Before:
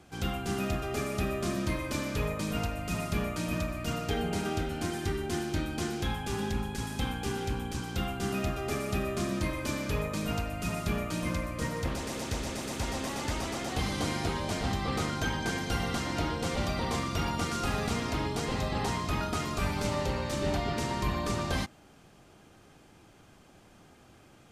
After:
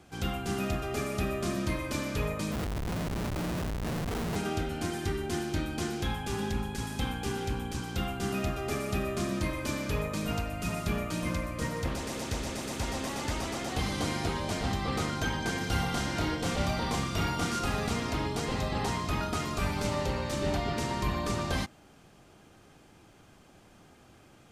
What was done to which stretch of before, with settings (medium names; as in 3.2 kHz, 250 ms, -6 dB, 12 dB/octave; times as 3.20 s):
2.52–4.36 s: Schmitt trigger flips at -32 dBFS
15.58–17.59 s: flutter echo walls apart 5 m, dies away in 0.34 s